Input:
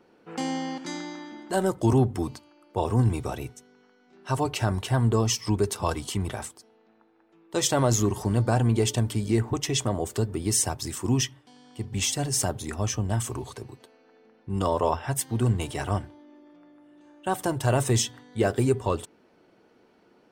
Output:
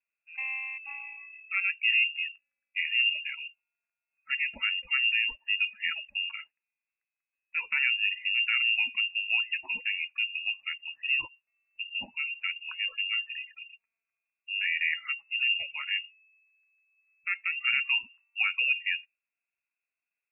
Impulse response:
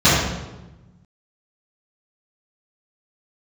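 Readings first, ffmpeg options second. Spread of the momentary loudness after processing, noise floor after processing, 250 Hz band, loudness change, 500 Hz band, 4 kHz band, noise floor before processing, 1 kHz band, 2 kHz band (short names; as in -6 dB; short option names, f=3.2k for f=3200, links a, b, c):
14 LU, under -85 dBFS, under -35 dB, -1.5 dB, under -35 dB, +4.5 dB, -61 dBFS, -17.5 dB, +12.5 dB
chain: -af "lowpass=f=2.5k:t=q:w=0.5098,lowpass=f=2.5k:t=q:w=0.6013,lowpass=f=2.5k:t=q:w=0.9,lowpass=f=2.5k:t=q:w=2.563,afreqshift=-2900,afftdn=nr=27:nf=-33,volume=-4.5dB"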